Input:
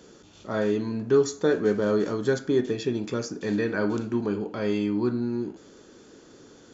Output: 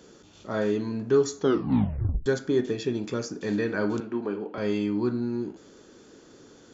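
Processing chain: 1.38 tape stop 0.88 s; 4–4.58 three-band isolator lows -13 dB, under 230 Hz, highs -16 dB, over 3500 Hz; gain -1 dB

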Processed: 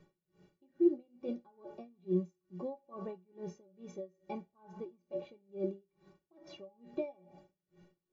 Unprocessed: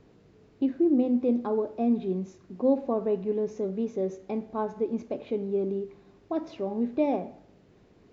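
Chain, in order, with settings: metallic resonator 170 Hz, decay 0.22 s, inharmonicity 0.03; dB-linear tremolo 2.3 Hz, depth 31 dB; gain +7 dB

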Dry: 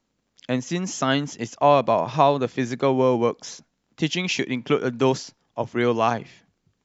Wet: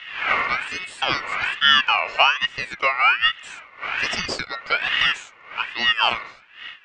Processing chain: wind noise 370 Hz -26 dBFS; speaker cabinet 190–5300 Hz, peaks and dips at 330 Hz -10 dB, 500 Hz +8 dB, 1100 Hz +9 dB, 2600 Hz +3 dB; ring modulator with a swept carrier 2000 Hz, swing 20%, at 1.2 Hz

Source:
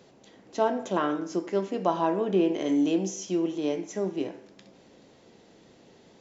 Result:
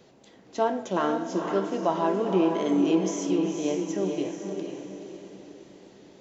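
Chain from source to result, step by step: wow and flutter 38 cents; diffused feedback echo 0.489 s, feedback 44%, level -5 dB

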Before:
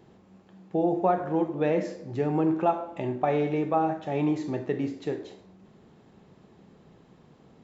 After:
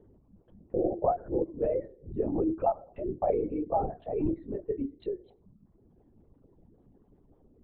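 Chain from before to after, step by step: formant sharpening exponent 2; reverb removal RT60 1.2 s; LPC vocoder at 8 kHz whisper; gain -2.5 dB

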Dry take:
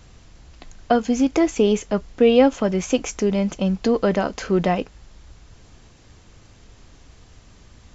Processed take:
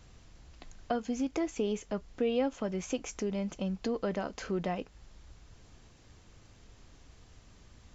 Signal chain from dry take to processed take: compressor 1.5:1, threshold -31 dBFS, peak gain reduction 8 dB; gain -8 dB

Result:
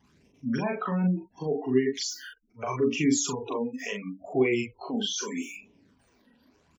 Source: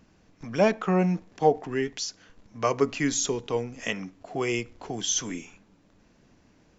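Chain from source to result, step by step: zero-crossing step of -35 dBFS; spectral noise reduction 23 dB; de-hum 95.79 Hz, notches 3; spectral gate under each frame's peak -25 dB strong; HPF 58 Hz; limiter -18.5 dBFS, peak gain reduction 11 dB; phaser stages 12, 0.75 Hz, lowest notch 110–1500 Hz; doubler 39 ms -3 dB; small resonant body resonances 250/400/990/2300 Hz, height 9 dB, ringing for 90 ms

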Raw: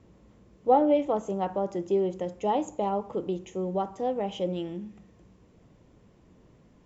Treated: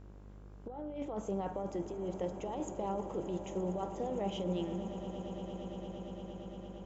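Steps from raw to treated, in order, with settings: negative-ratio compressor -30 dBFS, ratio -1; buzz 50 Hz, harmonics 33, -45 dBFS -7 dB/oct; swelling echo 0.115 s, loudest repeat 8, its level -17 dB; gain -7.5 dB

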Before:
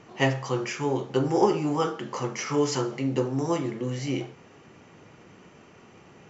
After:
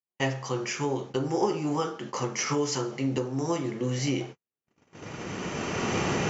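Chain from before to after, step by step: recorder AGC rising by 14 dB/s; Chebyshev low-pass 6800 Hz, order 3; gate -34 dBFS, range -53 dB; high shelf 4100 Hz +6.5 dB; gain -5 dB

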